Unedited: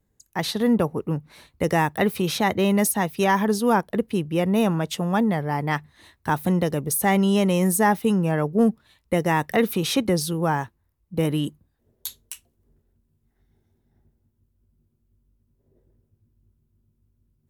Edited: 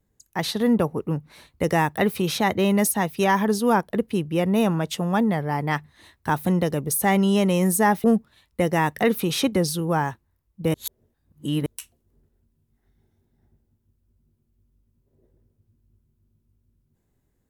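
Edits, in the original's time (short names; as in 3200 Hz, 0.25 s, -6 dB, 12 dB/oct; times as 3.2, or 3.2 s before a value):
8.04–8.57 cut
11.27–12.19 reverse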